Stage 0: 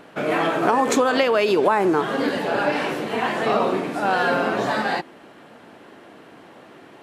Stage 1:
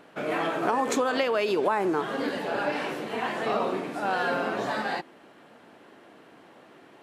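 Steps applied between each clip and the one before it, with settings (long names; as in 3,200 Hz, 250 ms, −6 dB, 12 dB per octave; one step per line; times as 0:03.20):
low-shelf EQ 110 Hz −5.5 dB
level −6.5 dB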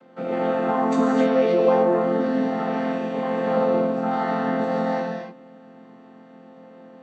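channel vocoder with a chord as carrier major triad, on F3
reverb whose tail is shaped and stops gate 320 ms flat, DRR −1 dB
level +1.5 dB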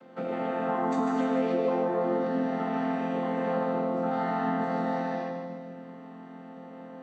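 downward compressor 2 to 1, threshold −33 dBFS, peak gain reduction 11 dB
echo with a time of its own for lows and highs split 340 Hz, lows 206 ms, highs 149 ms, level −6 dB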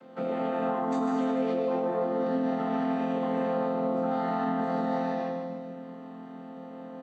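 brickwall limiter −22 dBFS, peak gain reduction 6 dB
double-tracking delay 27 ms −8 dB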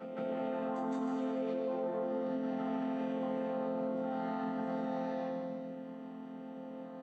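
downward compressor, threshold −29 dBFS, peak gain reduction 5.5 dB
backwards echo 164 ms −7 dB
level −5 dB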